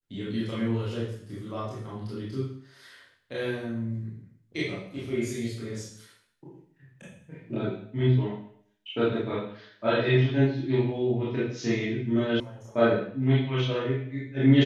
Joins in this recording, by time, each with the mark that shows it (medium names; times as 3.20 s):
12.40 s: sound stops dead